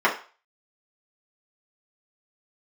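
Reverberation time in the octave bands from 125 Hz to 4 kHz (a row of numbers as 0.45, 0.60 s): 0.20, 0.25, 0.35, 0.40, 0.40, 0.40 s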